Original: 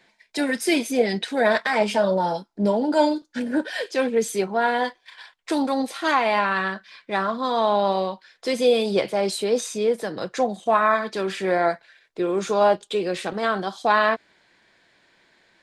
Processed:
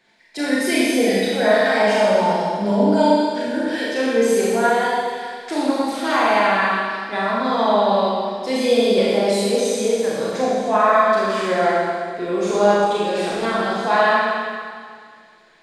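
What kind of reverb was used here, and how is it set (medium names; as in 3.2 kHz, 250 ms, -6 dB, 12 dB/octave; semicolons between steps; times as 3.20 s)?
Schroeder reverb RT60 2 s, combs from 27 ms, DRR -7 dB; trim -3.5 dB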